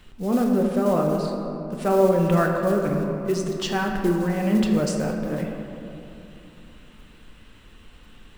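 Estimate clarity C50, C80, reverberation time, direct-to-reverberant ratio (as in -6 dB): 3.0 dB, 4.0 dB, 2.9 s, 0.5 dB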